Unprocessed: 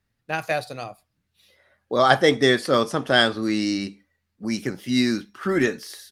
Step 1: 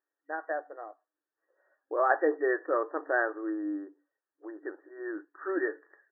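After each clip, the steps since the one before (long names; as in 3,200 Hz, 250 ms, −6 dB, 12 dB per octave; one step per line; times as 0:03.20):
brick-wall band-pass 290–1,900 Hz
level −8 dB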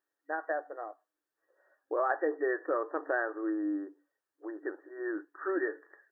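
downward compressor 2.5 to 1, threshold −31 dBFS, peak gain reduction 8.5 dB
level +2 dB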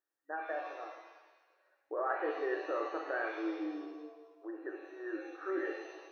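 reverb with rising layers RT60 1.2 s, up +7 semitones, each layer −8 dB, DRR 2.5 dB
level −6.5 dB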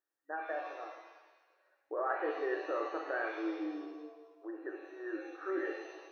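no processing that can be heard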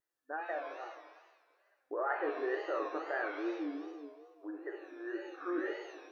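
tape wow and flutter 130 cents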